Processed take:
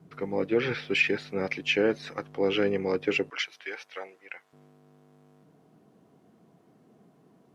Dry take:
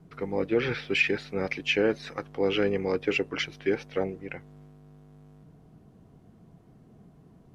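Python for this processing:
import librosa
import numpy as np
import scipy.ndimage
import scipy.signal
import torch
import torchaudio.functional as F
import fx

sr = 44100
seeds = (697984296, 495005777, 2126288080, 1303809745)

y = fx.highpass(x, sr, hz=fx.steps((0.0, 110.0), (3.3, 990.0), (4.53, 250.0)), slope=12)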